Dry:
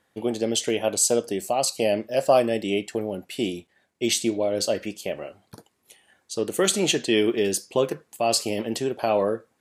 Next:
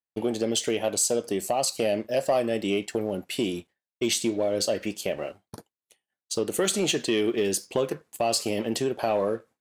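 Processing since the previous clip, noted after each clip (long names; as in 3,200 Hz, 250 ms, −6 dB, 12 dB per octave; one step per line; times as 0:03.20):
downward expander −42 dBFS
downward compressor 2 to 1, threshold −29 dBFS, peak gain reduction 9 dB
leveller curve on the samples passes 1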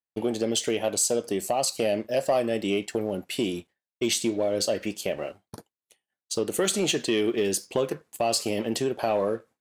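no processing that can be heard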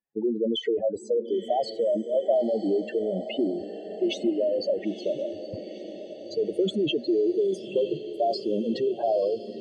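expanding power law on the bin magnitudes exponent 3.5
high-frequency loss of the air 300 metres
feedback delay with all-pass diffusion 945 ms, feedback 63%, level −12.5 dB
level +2.5 dB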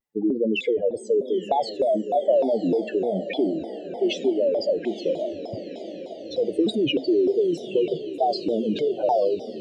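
on a send at −18 dB: convolution reverb, pre-delay 3 ms
on the sum: pitch modulation by a square or saw wave saw down 3.3 Hz, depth 250 cents
level +3 dB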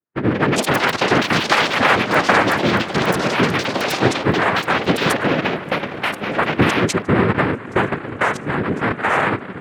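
adaptive Wiener filter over 25 samples
cochlear-implant simulation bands 3
delay with pitch and tempo change per echo 229 ms, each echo +6 semitones, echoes 3
level +4.5 dB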